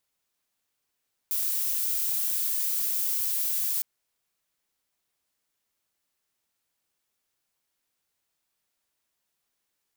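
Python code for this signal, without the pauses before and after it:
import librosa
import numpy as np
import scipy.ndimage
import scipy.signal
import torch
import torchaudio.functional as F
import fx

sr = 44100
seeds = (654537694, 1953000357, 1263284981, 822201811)

y = fx.noise_colour(sr, seeds[0], length_s=2.51, colour='violet', level_db=-27.5)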